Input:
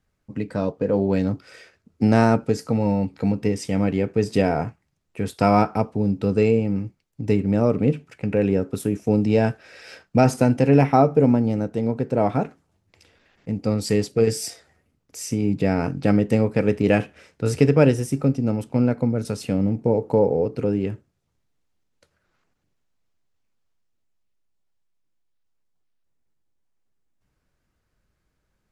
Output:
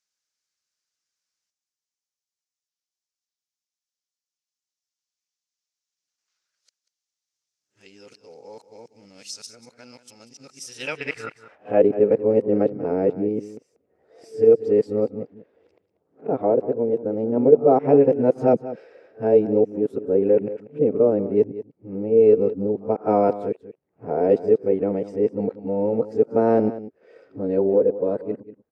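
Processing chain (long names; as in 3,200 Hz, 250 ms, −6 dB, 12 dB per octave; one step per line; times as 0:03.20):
played backwards from end to start
band-pass filter sweep 5,800 Hz → 450 Hz, 0:10.57–0:11.86
single-tap delay 189 ms −14.5 dB
level +6 dB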